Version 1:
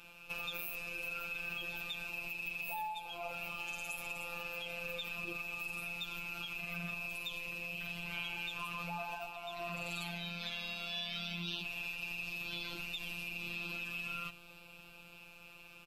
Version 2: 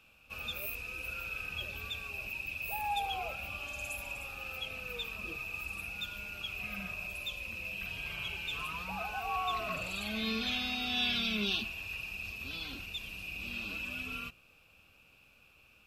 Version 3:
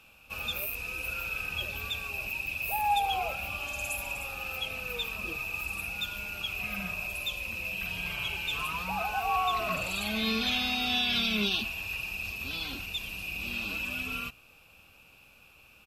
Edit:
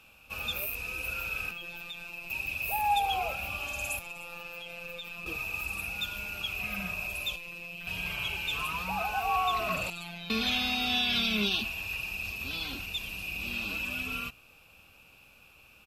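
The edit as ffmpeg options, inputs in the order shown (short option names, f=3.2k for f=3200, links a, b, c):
-filter_complex "[0:a]asplit=4[a][b][c][d];[2:a]asplit=5[e][f][g][h][i];[e]atrim=end=1.512[j];[a]atrim=start=1.508:end=2.302[k];[f]atrim=start=2.298:end=3.992[l];[b]atrim=start=3.988:end=5.262[m];[g]atrim=start=5.258:end=7.362[n];[c]atrim=start=7.358:end=7.872[o];[h]atrim=start=7.868:end=9.902[p];[d]atrim=start=9.898:end=10.302[q];[i]atrim=start=10.298[r];[j][k]acrossfade=d=0.004:c1=hsin:c2=hsin[s];[s][l]acrossfade=d=0.004:c1=hsin:c2=hsin[t];[t][m]acrossfade=d=0.004:c1=hsin:c2=hsin[u];[u][n]acrossfade=d=0.004:c1=hsin:c2=hsin[v];[v][o]acrossfade=d=0.004:c1=hsin:c2=hsin[w];[w][p]acrossfade=d=0.004:c1=hsin:c2=hsin[x];[x][q]acrossfade=d=0.004:c1=hsin:c2=hsin[y];[y][r]acrossfade=d=0.004:c1=hsin:c2=hsin"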